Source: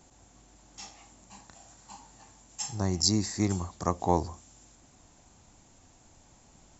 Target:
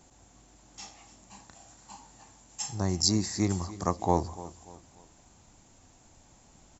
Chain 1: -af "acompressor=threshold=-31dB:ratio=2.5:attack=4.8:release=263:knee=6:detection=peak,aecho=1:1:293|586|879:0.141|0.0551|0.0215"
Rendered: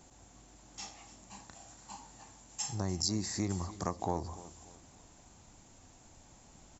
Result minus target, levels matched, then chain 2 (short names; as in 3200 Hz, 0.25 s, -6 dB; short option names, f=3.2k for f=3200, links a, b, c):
compressor: peak gain reduction +10.5 dB
-af "aecho=1:1:293|586|879:0.141|0.0551|0.0215"